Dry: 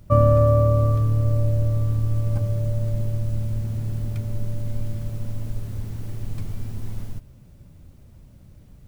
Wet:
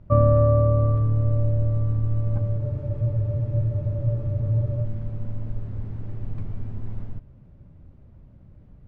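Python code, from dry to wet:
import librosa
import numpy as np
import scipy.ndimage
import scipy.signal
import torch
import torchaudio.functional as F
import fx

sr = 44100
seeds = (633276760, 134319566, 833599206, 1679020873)

y = scipy.signal.sosfilt(scipy.signal.bessel(2, 1400.0, 'lowpass', norm='mag', fs=sr, output='sos'), x)
y = fx.spec_freeze(y, sr, seeds[0], at_s=2.59, hold_s=2.24)
y = y * librosa.db_to_amplitude(-1.0)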